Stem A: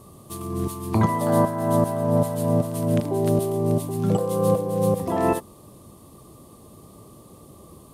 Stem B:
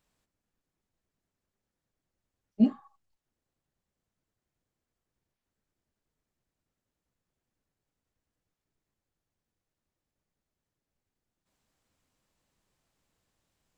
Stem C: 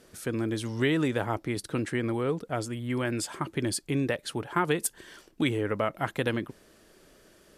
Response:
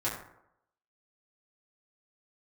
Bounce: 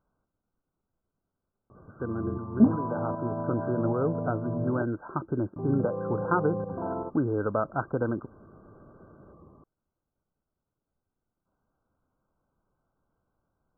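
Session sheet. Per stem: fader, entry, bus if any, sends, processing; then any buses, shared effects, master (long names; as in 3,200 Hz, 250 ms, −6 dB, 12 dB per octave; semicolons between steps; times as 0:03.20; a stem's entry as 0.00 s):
−6.5 dB, 1.70 s, muted 0:04.83–0:05.56, no send, brickwall limiter −17.5 dBFS, peak gain reduction 10 dB
+3.0 dB, 0.00 s, no send, no processing
+1.0 dB, 1.75 s, no send, automatic ducking −8 dB, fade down 0.85 s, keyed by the second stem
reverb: not used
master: linear-phase brick-wall low-pass 1,600 Hz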